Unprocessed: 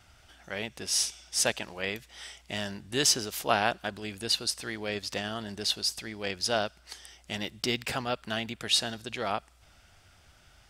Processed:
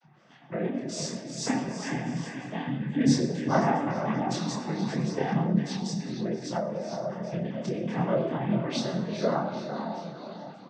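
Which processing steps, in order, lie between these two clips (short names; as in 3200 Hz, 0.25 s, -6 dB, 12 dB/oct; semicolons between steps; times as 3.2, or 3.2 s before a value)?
arpeggiated vocoder minor triad, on E3, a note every 0.126 s; comb 7.1 ms, depth 80%; diffused feedback echo 0.458 s, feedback 47%, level -6.5 dB; spectral gate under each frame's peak -20 dB strong; shoebox room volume 740 m³, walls mixed, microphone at 1.1 m; dynamic EQ 3400 Hz, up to -6 dB, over -47 dBFS, Q 0.76; noise vocoder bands 16; chorus voices 2, 0.47 Hz, delay 26 ms, depth 3 ms; 5.6–7.98 compressor 6:1, threshold -32 dBFS, peak gain reduction 9 dB; gain +5 dB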